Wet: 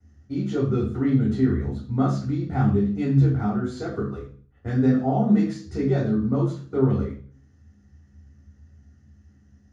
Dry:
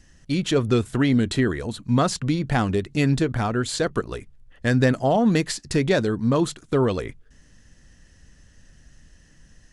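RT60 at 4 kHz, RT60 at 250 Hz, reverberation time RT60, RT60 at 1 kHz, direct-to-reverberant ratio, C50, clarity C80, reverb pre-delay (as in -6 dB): 0.40 s, 0.50 s, 0.45 s, 0.40 s, -10.0 dB, 6.0 dB, 11.0 dB, 3 ms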